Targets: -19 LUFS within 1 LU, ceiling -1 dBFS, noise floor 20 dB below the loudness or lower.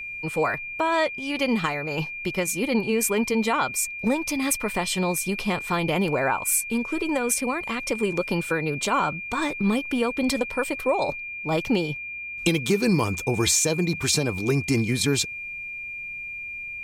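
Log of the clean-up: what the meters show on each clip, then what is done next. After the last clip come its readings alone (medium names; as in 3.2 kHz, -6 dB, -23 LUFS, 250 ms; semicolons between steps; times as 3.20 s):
steady tone 2.4 kHz; tone level -32 dBFS; loudness -24.5 LUFS; peak level -8.0 dBFS; loudness target -19.0 LUFS
-> band-stop 2.4 kHz, Q 30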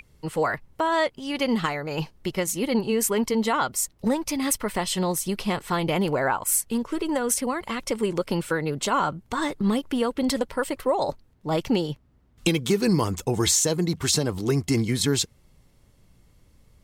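steady tone not found; loudness -25.0 LUFS; peak level -8.0 dBFS; loudness target -19.0 LUFS
-> trim +6 dB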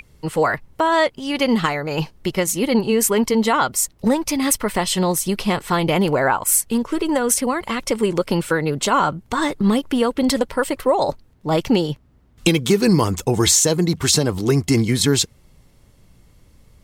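loudness -19.0 LUFS; peak level -2.0 dBFS; noise floor -54 dBFS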